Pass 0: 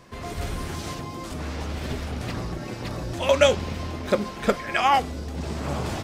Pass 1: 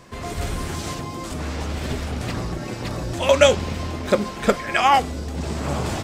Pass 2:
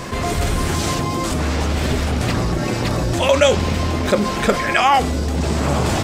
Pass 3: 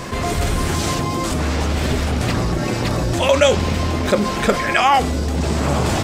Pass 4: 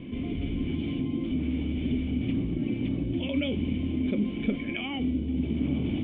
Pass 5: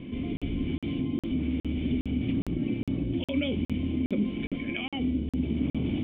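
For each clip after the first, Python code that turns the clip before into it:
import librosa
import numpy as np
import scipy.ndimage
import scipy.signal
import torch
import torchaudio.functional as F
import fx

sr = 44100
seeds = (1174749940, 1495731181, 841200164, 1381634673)

y1 = fx.peak_eq(x, sr, hz=7700.0, db=4.0, octaves=0.41)
y1 = F.gain(torch.from_numpy(y1), 3.5).numpy()
y2 = fx.env_flatten(y1, sr, amount_pct=50)
y2 = F.gain(torch.from_numpy(y2), -1.0).numpy()
y3 = y2
y4 = fx.formant_cascade(y3, sr, vowel='i')
y5 = fx.buffer_crackle(y4, sr, first_s=0.37, period_s=0.41, block=2048, kind='zero')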